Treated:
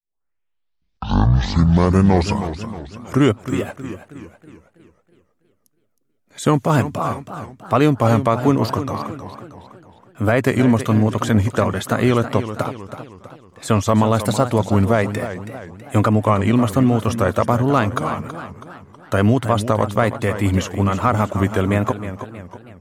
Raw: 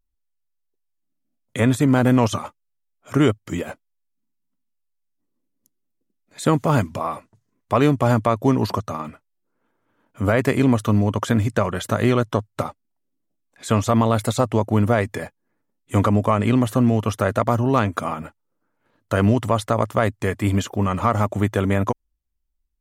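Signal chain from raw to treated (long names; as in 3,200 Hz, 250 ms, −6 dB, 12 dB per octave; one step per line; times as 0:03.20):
turntable start at the beginning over 2.73 s
pitch vibrato 1.2 Hz 92 cents
feedback echo with a swinging delay time 320 ms, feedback 47%, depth 155 cents, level −11 dB
level +2 dB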